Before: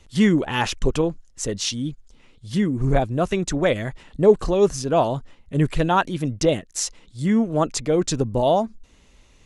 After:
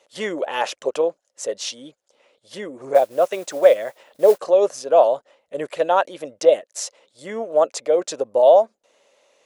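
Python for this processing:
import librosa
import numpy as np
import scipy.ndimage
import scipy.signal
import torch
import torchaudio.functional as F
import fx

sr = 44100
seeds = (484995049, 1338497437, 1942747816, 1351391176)

y = fx.mod_noise(x, sr, seeds[0], snr_db=23, at=(2.94, 4.37), fade=0.02)
y = fx.highpass_res(y, sr, hz=560.0, q=4.9)
y = y * 10.0 ** (-3.5 / 20.0)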